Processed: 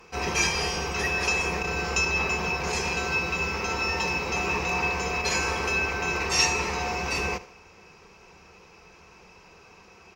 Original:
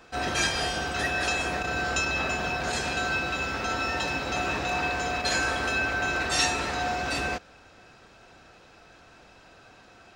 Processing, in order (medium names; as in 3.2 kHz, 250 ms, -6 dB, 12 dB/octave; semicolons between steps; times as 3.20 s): rippled EQ curve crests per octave 0.8, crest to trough 11 dB; on a send: feedback delay 77 ms, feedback 45%, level -17.5 dB